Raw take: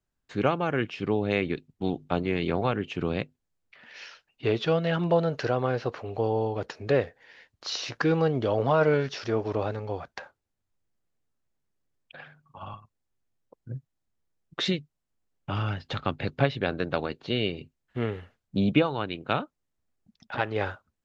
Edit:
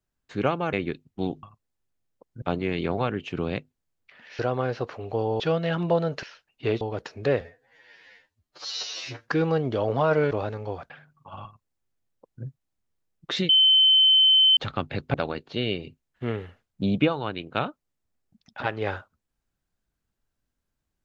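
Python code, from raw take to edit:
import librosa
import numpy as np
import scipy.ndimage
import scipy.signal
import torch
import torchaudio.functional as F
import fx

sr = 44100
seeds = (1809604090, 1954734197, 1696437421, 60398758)

y = fx.edit(x, sr, fx.cut(start_s=0.73, length_s=0.63),
    fx.swap(start_s=4.03, length_s=0.58, other_s=5.44, other_length_s=1.01),
    fx.stretch_span(start_s=7.05, length_s=0.94, factor=2.0),
    fx.cut(start_s=9.01, length_s=0.52),
    fx.cut(start_s=10.12, length_s=2.07),
    fx.duplicate(start_s=12.74, length_s=0.99, to_s=2.06),
    fx.bleep(start_s=14.78, length_s=1.08, hz=3070.0, db=-14.0),
    fx.cut(start_s=16.43, length_s=0.45), tone=tone)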